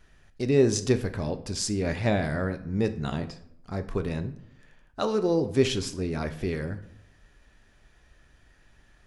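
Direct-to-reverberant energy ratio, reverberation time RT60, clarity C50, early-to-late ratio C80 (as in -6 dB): 9.0 dB, 0.70 s, 14.0 dB, 17.5 dB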